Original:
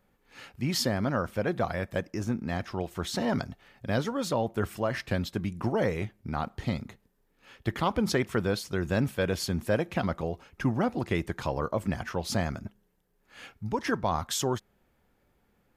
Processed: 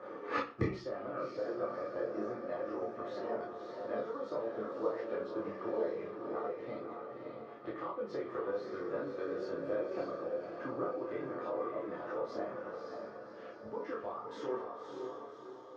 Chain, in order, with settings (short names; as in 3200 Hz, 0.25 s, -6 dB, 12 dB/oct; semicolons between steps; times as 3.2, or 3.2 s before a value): Chebyshev band-pass 350–5900 Hz, order 3; bell 1200 Hz +12 dB 0.22 oct; compressor 4:1, threshold -34 dBFS, peak gain reduction 12.5 dB; diffused feedback echo 0.573 s, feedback 48%, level -3.5 dB; flipped gate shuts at -39 dBFS, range -30 dB; chorus voices 6, 0.43 Hz, delay 27 ms, depth 4.5 ms; reverb RT60 0.40 s, pre-delay 3 ms, DRR -2.5 dB; gain +10 dB